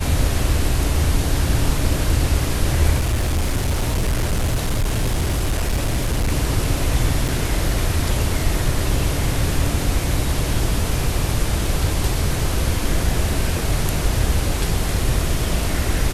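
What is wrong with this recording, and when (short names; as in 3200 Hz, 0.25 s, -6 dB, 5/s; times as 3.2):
2.98–6.32 clipped -15.5 dBFS
7.28–7.29 gap 5.5 ms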